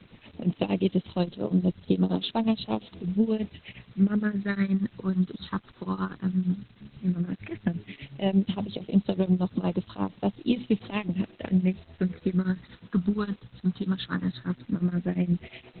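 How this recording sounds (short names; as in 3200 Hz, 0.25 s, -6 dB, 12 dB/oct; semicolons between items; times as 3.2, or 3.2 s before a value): phasing stages 6, 0.13 Hz, lowest notch 630–1900 Hz; tremolo triangle 8.5 Hz, depth 95%; a quantiser's noise floor 10-bit, dither triangular; Opus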